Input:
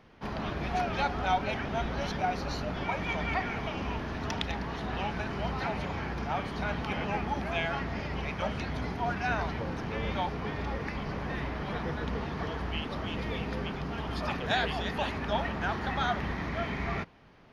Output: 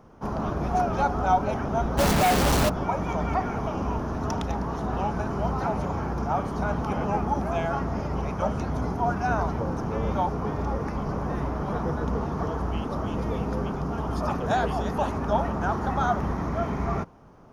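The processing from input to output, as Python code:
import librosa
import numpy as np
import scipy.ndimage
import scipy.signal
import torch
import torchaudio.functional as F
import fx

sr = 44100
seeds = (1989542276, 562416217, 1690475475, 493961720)

y = fx.band_shelf(x, sr, hz=2800.0, db=-14.5, octaves=1.7)
y = fx.quant_companded(y, sr, bits=2, at=(1.97, 2.68), fade=0.02)
y = y * 10.0 ** (6.5 / 20.0)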